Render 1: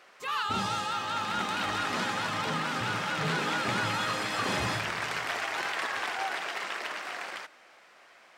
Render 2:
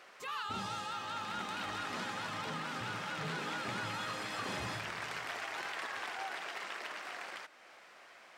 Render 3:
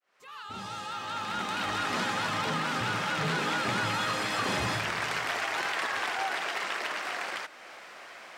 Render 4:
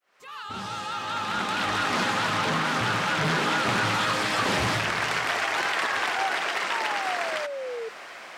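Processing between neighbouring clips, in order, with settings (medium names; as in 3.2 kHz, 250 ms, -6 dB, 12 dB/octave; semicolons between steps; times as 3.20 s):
compression 1.5:1, threshold -53 dBFS, peak gain reduction 9.5 dB
fade-in on the opening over 1.96 s; in parallel at -10.5 dB: saturation -39.5 dBFS, distortion -12 dB; on the sum: trim +8 dB
painted sound fall, 6.70–7.89 s, 440–960 Hz -38 dBFS; loudspeaker Doppler distortion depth 0.4 ms; trim +5 dB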